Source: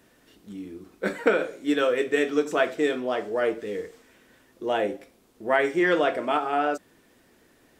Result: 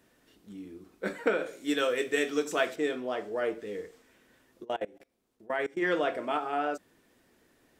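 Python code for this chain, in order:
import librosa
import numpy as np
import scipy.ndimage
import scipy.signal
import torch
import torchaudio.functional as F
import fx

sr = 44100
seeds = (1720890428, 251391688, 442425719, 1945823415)

y = fx.high_shelf(x, sr, hz=2800.0, db=9.5, at=(1.46, 2.76))
y = fx.level_steps(y, sr, step_db=24, at=(4.63, 5.81), fade=0.02)
y = F.gain(torch.from_numpy(y), -6.0).numpy()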